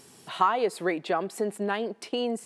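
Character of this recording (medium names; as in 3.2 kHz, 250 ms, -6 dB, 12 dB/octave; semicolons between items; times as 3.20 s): noise floor -54 dBFS; spectral tilt -3.0 dB/octave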